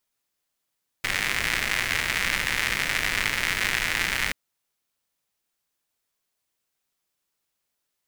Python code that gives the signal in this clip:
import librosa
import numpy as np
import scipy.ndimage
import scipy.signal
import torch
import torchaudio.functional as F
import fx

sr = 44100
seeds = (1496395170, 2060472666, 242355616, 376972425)

y = fx.rain(sr, seeds[0], length_s=3.28, drops_per_s=160.0, hz=2000.0, bed_db=-8.5)